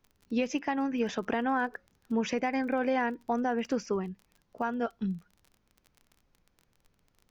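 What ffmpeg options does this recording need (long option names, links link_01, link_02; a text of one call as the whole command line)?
ffmpeg -i in.wav -af "adeclick=threshold=4,agate=range=-21dB:threshold=-64dB" out.wav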